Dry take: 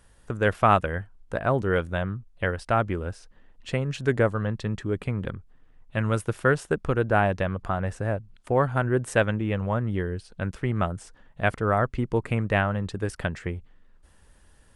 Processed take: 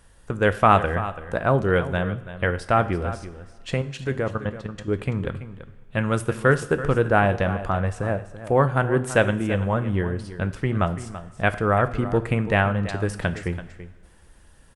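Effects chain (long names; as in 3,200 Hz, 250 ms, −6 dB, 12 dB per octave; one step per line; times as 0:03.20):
0:03.74–0:04.88: output level in coarse steps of 13 dB
single-tap delay 334 ms −13.5 dB
coupled-rooms reverb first 0.51 s, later 2.5 s, from −16 dB, DRR 10.5 dB
level +3 dB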